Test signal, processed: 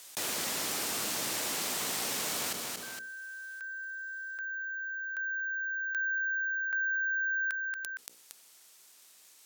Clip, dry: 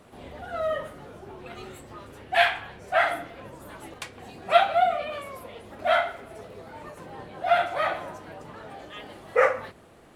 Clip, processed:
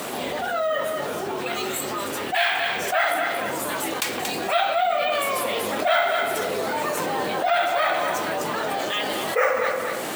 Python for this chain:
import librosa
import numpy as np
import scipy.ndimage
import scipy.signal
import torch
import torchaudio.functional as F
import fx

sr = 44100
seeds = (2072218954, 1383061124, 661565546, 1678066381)

y = scipy.signal.sosfilt(scipy.signal.butter(2, 230.0, 'highpass', fs=sr, output='sos'), x)
y = fx.peak_eq(y, sr, hz=9500.0, db=10.0, octaves=2.3)
y = fx.hum_notches(y, sr, base_hz=60, count=9)
y = fx.rider(y, sr, range_db=4, speed_s=0.5)
y = fx.echo_feedback(y, sr, ms=231, feedback_pct=18, wet_db=-13)
y = np.repeat(scipy.signal.resample_poly(y, 1, 2), 2)[:len(y)]
y = fx.env_flatten(y, sr, amount_pct=70)
y = y * 10.0 ** (-4.5 / 20.0)